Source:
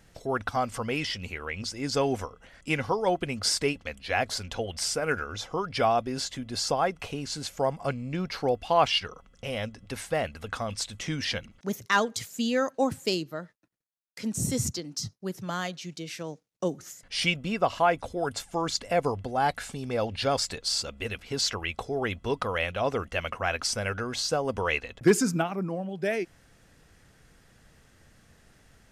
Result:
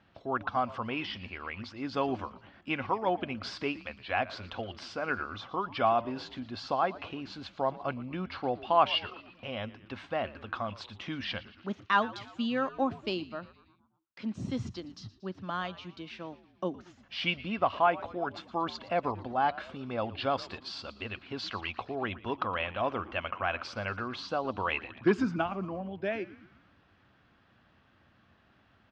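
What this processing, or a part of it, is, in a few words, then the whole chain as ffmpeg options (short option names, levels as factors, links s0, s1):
frequency-shifting delay pedal into a guitar cabinet: -filter_complex "[0:a]asplit=6[s0][s1][s2][s3][s4][s5];[s1]adelay=116,afreqshift=-100,volume=0.126[s6];[s2]adelay=232,afreqshift=-200,volume=0.0716[s7];[s3]adelay=348,afreqshift=-300,volume=0.0407[s8];[s4]adelay=464,afreqshift=-400,volume=0.0234[s9];[s5]adelay=580,afreqshift=-500,volume=0.0133[s10];[s0][s6][s7][s8][s9][s10]amix=inputs=6:normalize=0,highpass=100,equalizer=f=150:t=q:w=4:g=-9,equalizer=f=460:t=q:w=4:g=-9,equalizer=f=1100:t=q:w=4:g=4,equalizer=f=2000:t=q:w=4:g=-6,lowpass=f=3500:w=0.5412,lowpass=f=3500:w=1.3066,volume=0.794"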